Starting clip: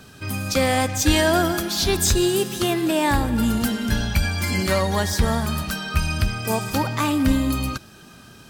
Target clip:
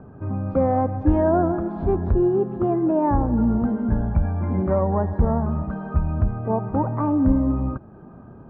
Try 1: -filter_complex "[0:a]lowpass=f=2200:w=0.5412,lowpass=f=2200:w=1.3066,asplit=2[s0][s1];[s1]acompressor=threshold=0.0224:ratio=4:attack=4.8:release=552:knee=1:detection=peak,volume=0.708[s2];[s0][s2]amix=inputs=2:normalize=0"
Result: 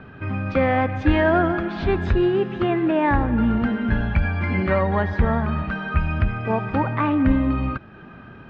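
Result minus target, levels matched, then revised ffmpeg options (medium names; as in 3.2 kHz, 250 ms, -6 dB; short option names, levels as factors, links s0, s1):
2 kHz band +16.5 dB
-filter_complex "[0:a]lowpass=f=1000:w=0.5412,lowpass=f=1000:w=1.3066,asplit=2[s0][s1];[s1]acompressor=threshold=0.0224:ratio=4:attack=4.8:release=552:knee=1:detection=peak,volume=0.708[s2];[s0][s2]amix=inputs=2:normalize=0"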